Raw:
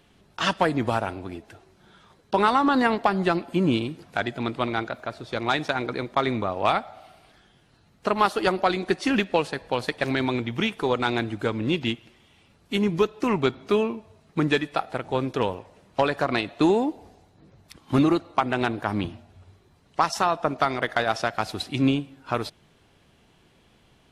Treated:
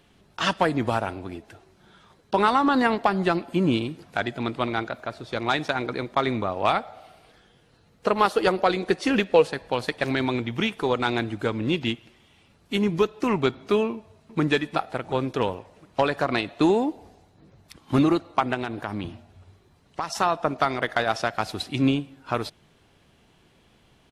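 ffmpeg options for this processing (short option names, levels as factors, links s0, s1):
-filter_complex "[0:a]asettb=1/sr,asplit=3[s0][s1][s2];[s0]atrim=end=6.794[s3];[s1]atrim=start=6.79:end=9.52,asetpts=PTS-STARTPTS,afade=t=in:d=0.004:c=qsin,afade=t=out:st=2.726:d=0.004:c=qsin,equalizer=f=480:w=7.3:g=10.5[s4];[s2]atrim=start=9.516[s5];[s3][s4]acrossfade=d=0.004:c1=hsin:c2=qsin[s6];[s6][s5]acrossfade=d=0.004:c1=qsin:c2=hsin,asplit=2[s7][s8];[s8]afade=t=in:st=13.93:d=0.01,afade=t=out:st=14.41:d=0.01,aecho=0:1:360|720|1080|1440|1800:0.281838|0.140919|0.0704596|0.0352298|0.0176149[s9];[s7][s9]amix=inputs=2:normalize=0,asettb=1/sr,asplit=3[s10][s11][s12];[s10]atrim=end=18.544[s13];[s11]atrim=start=18.54:end=20.15,asetpts=PTS-STARTPTS,afade=t=in:d=0.004:c=qsin,afade=t=out:st=1.606:d=0.004:c=qsin,acompressor=threshold=0.0447:ratio=2.5:attack=3.2:release=140:knee=1:detection=peak[s14];[s12]atrim=start=20.146[s15];[s13][s14]acrossfade=d=0.004:c1=hsin:c2=qsin[s16];[s16][s15]acrossfade=d=0.004:c1=qsin:c2=hsin"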